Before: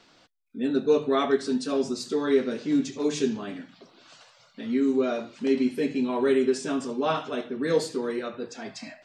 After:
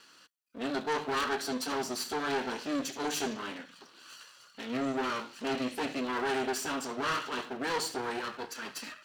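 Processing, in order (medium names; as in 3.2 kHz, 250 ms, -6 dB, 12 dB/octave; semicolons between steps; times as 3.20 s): comb filter that takes the minimum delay 0.68 ms; high-pass 740 Hz 6 dB/octave; saturation -30 dBFS, distortion -10 dB; trim +3.5 dB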